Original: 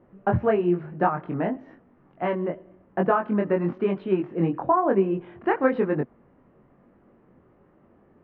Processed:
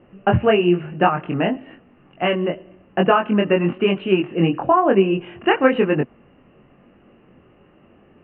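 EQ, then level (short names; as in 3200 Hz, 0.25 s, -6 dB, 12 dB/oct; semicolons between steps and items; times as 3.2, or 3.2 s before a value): synth low-pass 2800 Hz, resonance Q 14; air absorption 220 m; notch 960 Hz, Q 16; +6.0 dB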